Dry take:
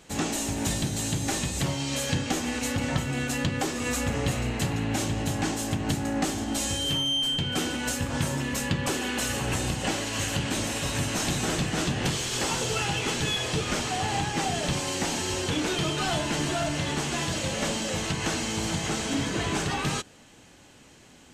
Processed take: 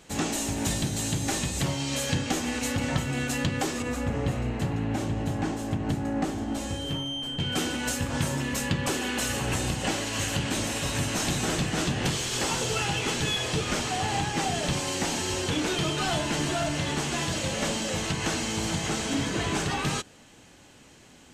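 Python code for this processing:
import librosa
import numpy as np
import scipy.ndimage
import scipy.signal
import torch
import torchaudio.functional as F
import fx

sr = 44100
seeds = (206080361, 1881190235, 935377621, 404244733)

y = fx.high_shelf(x, sr, hz=2200.0, db=-12.0, at=(3.82, 7.4))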